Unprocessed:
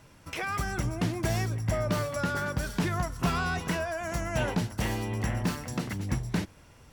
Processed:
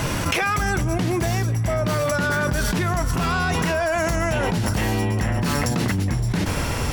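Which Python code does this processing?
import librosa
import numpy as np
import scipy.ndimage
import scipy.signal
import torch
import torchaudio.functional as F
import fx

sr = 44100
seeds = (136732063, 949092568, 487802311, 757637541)

p1 = fx.doppler_pass(x, sr, speed_mps=8, closest_m=6.3, pass_at_s=3.21)
p2 = 10.0 ** (-32.0 / 20.0) * np.tanh(p1 / 10.0 ** (-32.0 / 20.0))
p3 = p1 + F.gain(torch.from_numpy(p2), -5.0).numpy()
y = fx.env_flatten(p3, sr, amount_pct=100)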